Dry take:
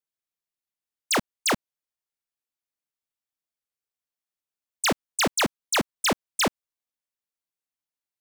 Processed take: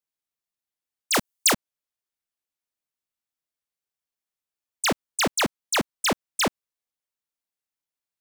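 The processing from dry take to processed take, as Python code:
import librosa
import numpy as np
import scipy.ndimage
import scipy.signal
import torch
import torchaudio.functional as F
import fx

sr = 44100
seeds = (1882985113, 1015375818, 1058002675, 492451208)

y = fx.high_shelf(x, sr, hz=4800.0, db=11.0, at=(1.14, 1.54))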